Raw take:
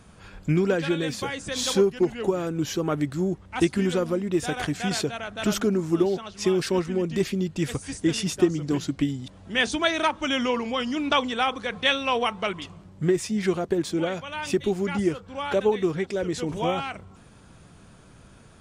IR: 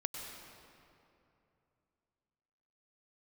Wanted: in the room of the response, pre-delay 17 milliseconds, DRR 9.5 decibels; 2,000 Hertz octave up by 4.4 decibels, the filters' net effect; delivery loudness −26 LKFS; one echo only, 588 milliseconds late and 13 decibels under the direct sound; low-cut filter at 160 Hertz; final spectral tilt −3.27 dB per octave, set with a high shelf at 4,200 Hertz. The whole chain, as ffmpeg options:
-filter_complex "[0:a]highpass=160,equalizer=frequency=2000:width_type=o:gain=6.5,highshelf=frequency=4200:gain=-4.5,aecho=1:1:588:0.224,asplit=2[link_01][link_02];[1:a]atrim=start_sample=2205,adelay=17[link_03];[link_02][link_03]afir=irnorm=-1:irlink=0,volume=-10.5dB[link_04];[link_01][link_04]amix=inputs=2:normalize=0,volume=-1.5dB"

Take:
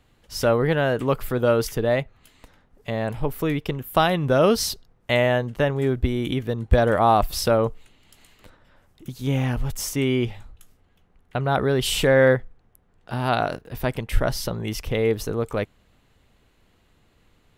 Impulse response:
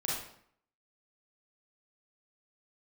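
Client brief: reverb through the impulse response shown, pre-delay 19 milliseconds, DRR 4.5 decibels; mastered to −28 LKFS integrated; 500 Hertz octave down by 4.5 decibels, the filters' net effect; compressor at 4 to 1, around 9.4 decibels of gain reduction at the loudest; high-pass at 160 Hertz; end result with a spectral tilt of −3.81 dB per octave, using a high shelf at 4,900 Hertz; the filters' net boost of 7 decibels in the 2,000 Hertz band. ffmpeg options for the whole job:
-filter_complex "[0:a]highpass=160,equalizer=frequency=500:width_type=o:gain=-6,equalizer=frequency=2000:width_type=o:gain=8,highshelf=frequency=4900:gain=8,acompressor=threshold=-24dB:ratio=4,asplit=2[link_01][link_02];[1:a]atrim=start_sample=2205,adelay=19[link_03];[link_02][link_03]afir=irnorm=-1:irlink=0,volume=-9.5dB[link_04];[link_01][link_04]amix=inputs=2:normalize=0,volume=-1dB"

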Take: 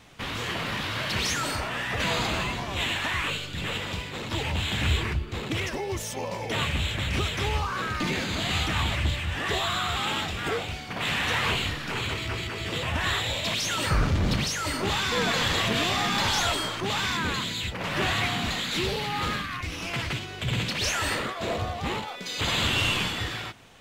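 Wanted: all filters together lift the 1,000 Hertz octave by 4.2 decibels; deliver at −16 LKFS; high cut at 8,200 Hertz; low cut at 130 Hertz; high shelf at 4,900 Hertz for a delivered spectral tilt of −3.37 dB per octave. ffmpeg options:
ffmpeg -i in.wav -af "highpass=130,lowpass=8200,equalizer=frequency=1000:width_type=o:gain=5.5,highshelf=frequency=4900:gain=-3,volume=11dB" out.wav

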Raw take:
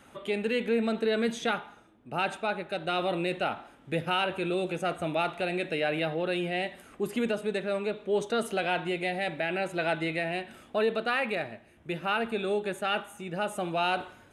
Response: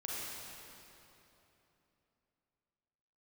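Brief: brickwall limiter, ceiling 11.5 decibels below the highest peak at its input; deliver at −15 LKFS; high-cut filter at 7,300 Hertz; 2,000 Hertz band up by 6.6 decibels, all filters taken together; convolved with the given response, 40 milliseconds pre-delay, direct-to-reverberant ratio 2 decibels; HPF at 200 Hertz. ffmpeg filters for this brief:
-filter_complex "[0:a]highpass=200,lowpass=7300,equalizer=frequency=2000:width_type=o:gain=9,alimiter=limit=-22.5dB:level=0:latency=1,asplit=2[link_01][link_02];[1:a]atrim=start_sample=2205,adelay=40[link_03];[link_02][link_03]afir=irnorm=-1:irlink=0,volume=-4dB[link_04];[link_01][link_04]amix=inputs=2:normalize=0,volume=16dB"

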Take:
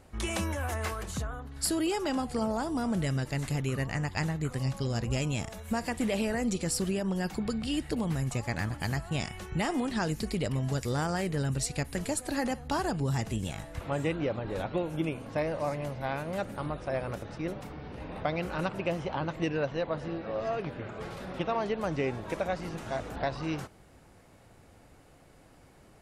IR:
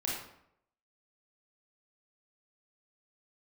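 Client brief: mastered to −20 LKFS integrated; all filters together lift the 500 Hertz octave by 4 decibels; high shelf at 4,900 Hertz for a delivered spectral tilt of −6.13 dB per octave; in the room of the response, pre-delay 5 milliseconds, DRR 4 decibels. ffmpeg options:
-filter_complex "[0:a]equalizer=frequency=500:width_type=o:gain=5,highshelf=frequency=4900:gain=-7.5,asplit=2[link_01][link_02];[1:a]atrim=start_sample=2205,adelay=5[link_03];[link_02][link_03]afir=irnorm=-1:irlink=0,volume=-8.5dB[link_04];[link_01][link_04]amix=inputs=2:normalize=0,volume=9.5dB"

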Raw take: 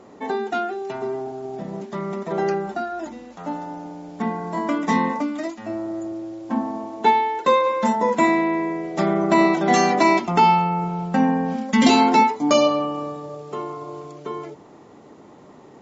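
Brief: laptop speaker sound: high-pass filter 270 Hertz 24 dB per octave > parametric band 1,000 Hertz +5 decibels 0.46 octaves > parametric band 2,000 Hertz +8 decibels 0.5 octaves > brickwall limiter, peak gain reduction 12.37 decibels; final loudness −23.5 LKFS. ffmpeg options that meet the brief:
ffmpeg -i in.wav -af "highpass=frequency=270:width=0.5412,highpass=frequency=270:width=1.3066,equalizer=frequency=1000:width_type=o:width=0.46:gain=5,equalizer=frequency=2000:width_type=o:width=0.5:gain=8,volume=1.5dB,alimiter=limit=-13.5dB:level=0:latency=1" out.wav

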